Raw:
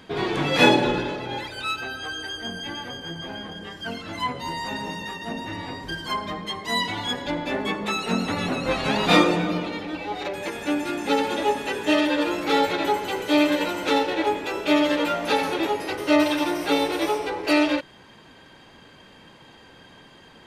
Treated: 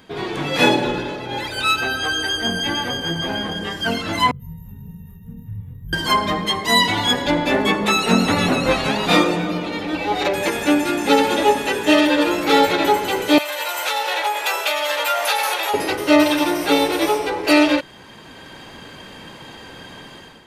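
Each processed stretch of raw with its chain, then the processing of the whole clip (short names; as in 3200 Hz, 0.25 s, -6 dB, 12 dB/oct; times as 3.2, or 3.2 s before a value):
4.31–5.93 inverse Chebyshev band-stop 290–9300 Hz + doubler 26 ms -5 dB + small resonant body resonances 470/750/3400 Hz, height 13 dB, ringing for 25 ms
13.38–15.74 high shelf 9600 Hz +10.5 dB + compressor 5:1, threshold -24 dBFS + HPF 630 Hz 24 dB/oct
whole clip: high shelf 9900 Hz +8 dB; AGC; gain -1 dB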